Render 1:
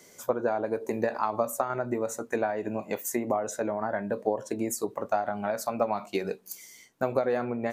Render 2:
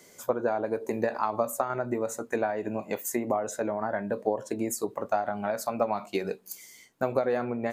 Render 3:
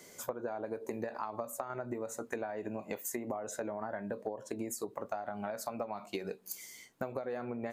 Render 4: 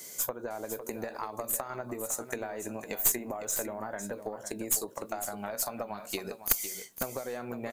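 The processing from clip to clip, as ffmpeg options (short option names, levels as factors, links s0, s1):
-af "bandreject=f=5800:w=20"
-af "acompressor=threshold=0.0178:ratio=6"
-af "crystalizer=i=3.5:c=0,aeval=exprs='0.422*(cos(1*acos(clip(val(0)/0.422,-1,1)))-cos(1*PI/2))+0.211*(cos(2*acos(clip(val(0)/0.422,-1,1)))-cos(2*PI/2))':c=same,aecho=1:1:505:0.299"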